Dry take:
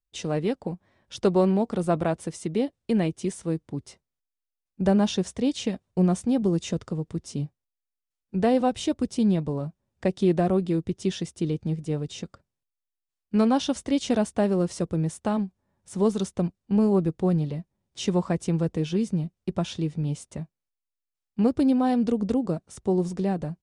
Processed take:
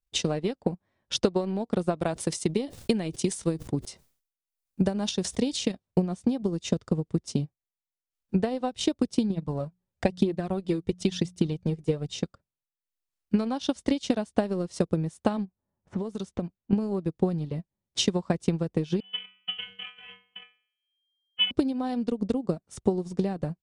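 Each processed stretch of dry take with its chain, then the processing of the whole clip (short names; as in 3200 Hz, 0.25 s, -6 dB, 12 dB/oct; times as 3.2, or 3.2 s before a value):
1.98–5.72 high shelf 5800 Hz +8 dB + sustainer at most 100 dB/s
9.3–12.12 notches 60/120/180 Hz + phaser 1 Hz, delay 2.6 ms, feedback 46%
15.45–16.73 low-pass opened by the level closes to 1200 Hz, open at -21 dBFS + compressor, threshold -32 dBFS
19–21.51 half-waves squared off + metallic resonator 200 Hz, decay 0.68 s, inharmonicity 0.002 + inverted band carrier 3200 Hz
whole clip: dynamic EQ 4300 Hz, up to +5 dB, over -50 dBFS, Q 1.4; compressor 10:1, threshold -26 dBFS; transient shaper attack +8 dB, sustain -10 dB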